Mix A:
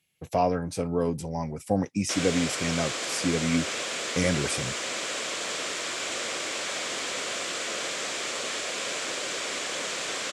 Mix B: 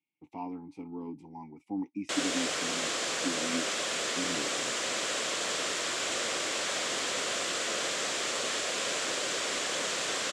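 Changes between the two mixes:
speech: add vowel filter u; master: add bell 2300 Hz -3.5 dB 0.21 oct

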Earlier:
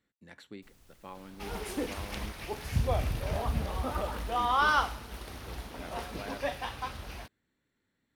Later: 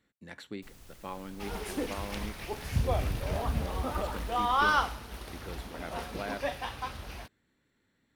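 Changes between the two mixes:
speech +5.5 dB; first sound +8.0 dB

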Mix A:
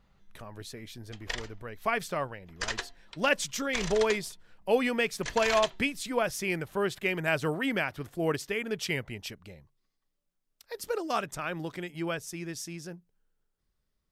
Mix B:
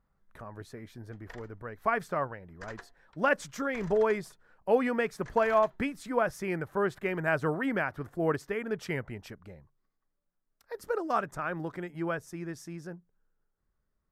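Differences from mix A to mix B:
background -10.5 dB; master: add resonant high shelf 2100 Hz -10 dB, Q 1.5

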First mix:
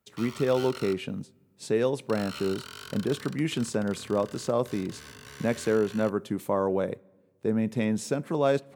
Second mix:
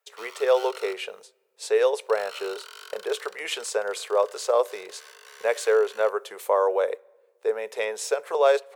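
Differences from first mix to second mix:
speech +6.5 dB; master: add elliptic high-pass 440 Hz, stop band 40 dB

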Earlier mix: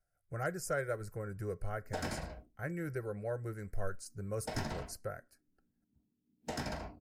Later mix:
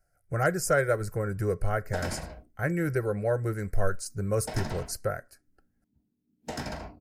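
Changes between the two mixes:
speech +11.0 dB; background +3.5 dB

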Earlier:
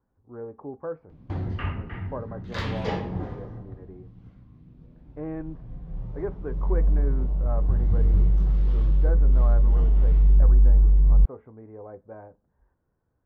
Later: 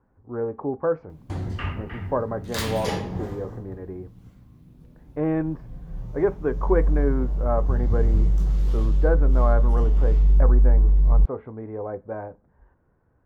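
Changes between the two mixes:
speech +9.5 dB; master: remove air absorption 230 m

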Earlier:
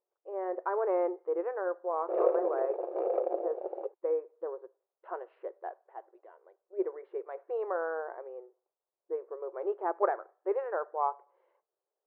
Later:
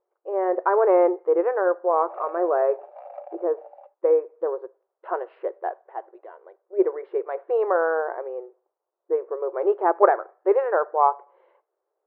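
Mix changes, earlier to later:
speech +11.5 dB; background: add rippled Chebyshev high-pass 570 Hz, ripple 6 dB

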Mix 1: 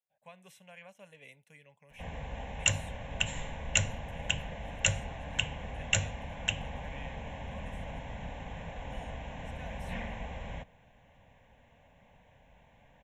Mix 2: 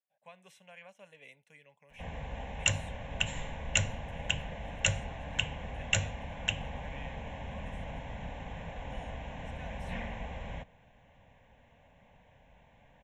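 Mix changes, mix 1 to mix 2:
speech: add HPF 230 Hz 6 dB/oct; master: add bell 13000 Hz -8.5 dB 0.87 oct

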